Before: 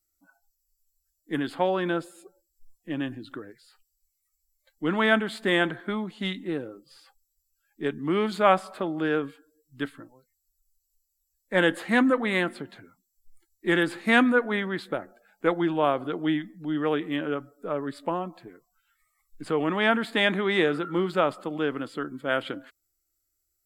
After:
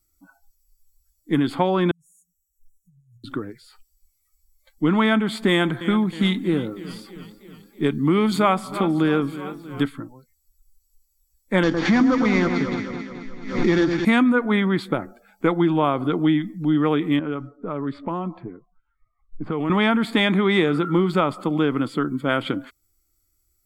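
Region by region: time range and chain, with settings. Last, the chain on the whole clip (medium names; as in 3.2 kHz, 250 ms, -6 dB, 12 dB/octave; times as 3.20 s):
1.91–3.24 s: amplifier tone stack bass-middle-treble 5-5-5 + compression 10:1, threshold -59 dBFS + brick-wall FIR band-stop 190–5500 Hz
5.49–9.83 s: treble shelf 6.6 kHz +8 dB + modulated delay 320 ms, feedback 59%, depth 79 cents, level -17.5 dB
11.63–14.05 s: CVSD coder 32 kbps + echo whose repeats swap between lows and highs 108 ms, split 1.6 kHz, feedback 75%, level -7 dB + swell ahead of each attack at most 97 dB/s
17.19–19.70 s: level-controlled noise filter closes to 670 Hz, open at -22.5 dBFS + compression 2:1, threshold -37 dBFS
whole clip: bass shelf 460 Hz +7 dB; comb 0.9 ms, depth 38%; compression 3:1, threshold -22 dBFS; trim +6 dB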